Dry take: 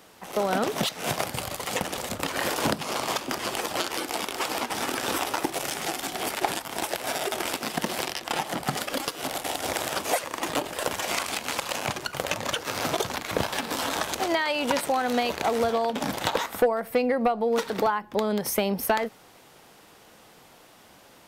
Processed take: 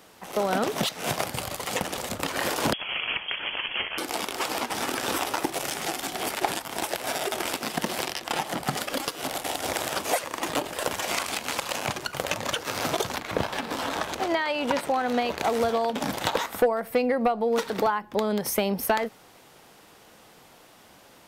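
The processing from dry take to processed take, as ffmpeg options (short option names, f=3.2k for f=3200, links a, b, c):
-filter_complex "[0:a]asettb=1/sr,asplit=3[a][b][c];[a]atrim=end=2.734[d];[b]atrim=start=2.73:end=3.98,asetpts=PTS-STARTPTS,afade=t=in:d=0.004:c=qsin,afade=t=out:st=1.246:d=0.004:c=qsin,lowpass=f=3k:t=q:w=0.5098,lowpass=f=3k:t=q:w=0.6013,lowpass=f=3k:t=q:w=0.9,lowpass=f=3k:t=q:w=2.563,afreqshift=-3500[e];[c]atrim=start=3.976[f];[d][e]acrossfade=d=0.004:c1=hsin:c2=qsin[g];[g][f]acrossfade=d=0.004:c1=qsin:c2=hsin,asettb=1/sr,asplit=3[h][i][j];[h]atrim=end=13.204[k];[i]atrim=start=13.2:end=15.38,asetpts=PTS-STARTPTS,afade=t=in:d=0.004:c=qsin,afade=t=out:st=2.176:d=0.004:c=qsin,equalizer=f=13k:t=o:w=2.1:g=-8.5[l];[j]atrim=start=15.376[m];[k][l]acrossfade=d=0.004:c1=hsin:c2=qsin[n];[n][m]acrossfade=d=0.004:c1=qsin:c2=hsin"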